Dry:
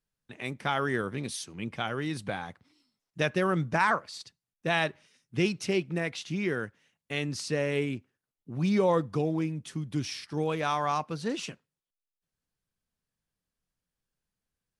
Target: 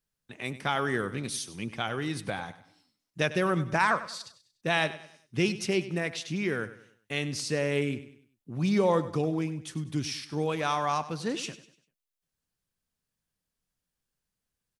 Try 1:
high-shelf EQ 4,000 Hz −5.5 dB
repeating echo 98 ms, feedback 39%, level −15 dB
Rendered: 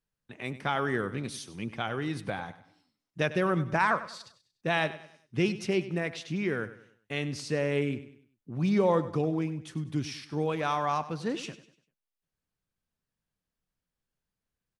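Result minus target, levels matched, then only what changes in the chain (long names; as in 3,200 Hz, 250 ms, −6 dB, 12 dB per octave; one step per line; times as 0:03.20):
8,000 Hz band −6.5 dB
change: high-shelf EQ 4,000 Hz +4 dB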